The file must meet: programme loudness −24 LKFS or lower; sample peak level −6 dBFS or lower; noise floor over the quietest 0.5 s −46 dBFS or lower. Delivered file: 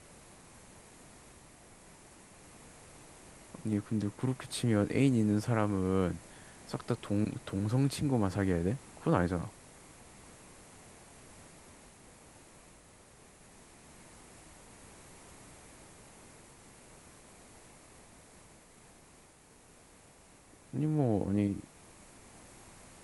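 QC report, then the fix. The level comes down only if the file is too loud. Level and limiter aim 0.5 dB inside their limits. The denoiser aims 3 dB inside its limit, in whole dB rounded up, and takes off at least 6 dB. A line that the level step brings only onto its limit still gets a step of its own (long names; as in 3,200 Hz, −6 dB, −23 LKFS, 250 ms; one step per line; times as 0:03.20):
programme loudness −32.5 LKFS: in spec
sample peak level −13.0 dBFS: in spec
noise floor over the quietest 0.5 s −59 dBFS: in spec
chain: no processing needed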